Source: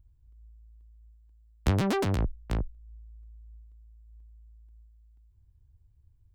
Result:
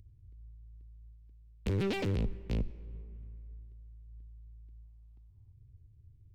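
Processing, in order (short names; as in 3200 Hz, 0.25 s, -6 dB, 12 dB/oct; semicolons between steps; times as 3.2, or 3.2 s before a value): in parallel at +0.5 dB: compressor, threshold -36 dBFS, peak gain reduction 15 dB; on the sum: air absorption 340 m; hard clip -25.5 dBFS, distortion -9 dB; on a send at -19 dB: reverb RT60 2.3 s, pre-delay 72 ms; on the sum: formant shift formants +6 st; spectral gain 4.83–5.53, 580–1300 Hz +11 dB; band shelf 1000 Hz -11 dB; gain -2.5 dB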